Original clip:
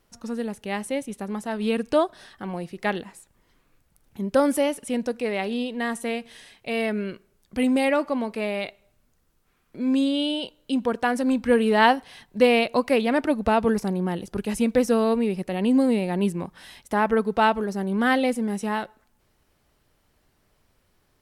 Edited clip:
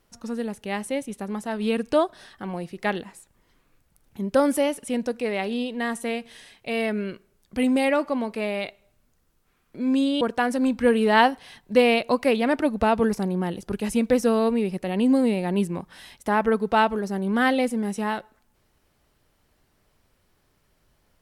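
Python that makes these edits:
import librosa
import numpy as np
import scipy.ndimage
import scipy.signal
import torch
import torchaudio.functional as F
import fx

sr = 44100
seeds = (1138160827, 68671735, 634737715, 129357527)

y = fx.edit(x, sr, fx.cut(start_s=10.21, length_s=0.65), tone=tone)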